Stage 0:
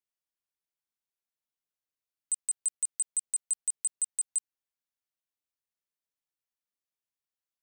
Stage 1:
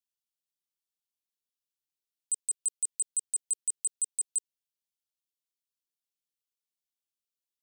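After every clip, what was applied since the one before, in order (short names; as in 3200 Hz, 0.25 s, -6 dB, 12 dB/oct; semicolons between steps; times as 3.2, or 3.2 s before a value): inverse Chebyshev band-stop 730–1600 Hz, stop band 50 dB; low shelf 400 Hz -9.5 dB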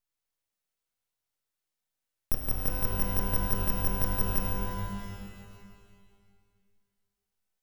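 frequency shift +170 Hz; full-wave rectifier; shimmer reverb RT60 1.9 s, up +12 st, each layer -2 dB, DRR 1 dB; gain +4.5 dB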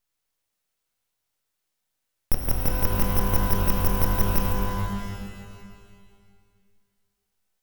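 Doppler distortion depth 0.27 ms; gain +7 dB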